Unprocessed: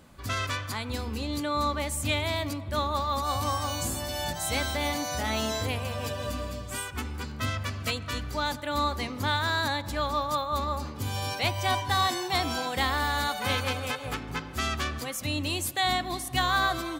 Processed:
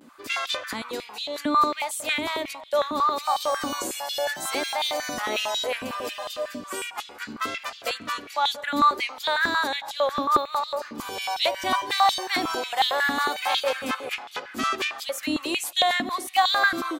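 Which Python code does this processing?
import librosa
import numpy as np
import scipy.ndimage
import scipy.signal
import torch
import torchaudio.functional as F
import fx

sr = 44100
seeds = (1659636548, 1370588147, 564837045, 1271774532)

y = fx.vibrato(x, sr, rate_hz=0.68, depth_cents=58.0)
y = fx.filter_held_highpass(y, sr, hz=11.0, low_hz=260.0, high_hz=3500.0)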